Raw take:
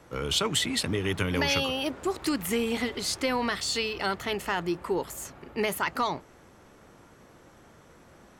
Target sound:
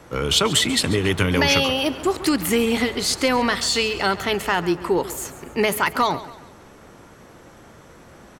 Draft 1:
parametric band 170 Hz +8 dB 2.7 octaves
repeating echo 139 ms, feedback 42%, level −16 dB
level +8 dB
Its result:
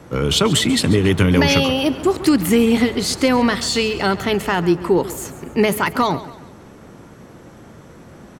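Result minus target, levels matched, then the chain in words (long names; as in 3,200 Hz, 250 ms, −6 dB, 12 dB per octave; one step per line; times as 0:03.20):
125 Hz band +3.5 dB
repeating echo 139 ms, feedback 42%, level −16 dB
level +8 dB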